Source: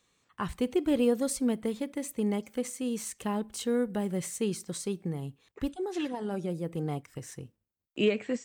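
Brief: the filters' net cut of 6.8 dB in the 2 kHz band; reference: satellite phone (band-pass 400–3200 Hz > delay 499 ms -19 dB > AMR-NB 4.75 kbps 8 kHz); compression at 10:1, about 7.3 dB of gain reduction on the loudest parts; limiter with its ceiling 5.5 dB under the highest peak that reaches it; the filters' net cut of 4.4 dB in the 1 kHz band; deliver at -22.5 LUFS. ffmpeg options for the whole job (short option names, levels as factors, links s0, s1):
-af "equalizer=f=1000:t=o:g=-4,equalizer=f=2000:t=o:g=-7,acompressor=threshold=0.0355:ratio=10,alimiter=level_in=1.5:limit=0.0631:level=0:latency=1,volume=0.668,highpass=400,lowpass=3200,aecho=1:1:499:0.112,volume=11.9" -ar 8000 -c:a libopencore_amrnb -b:a 4750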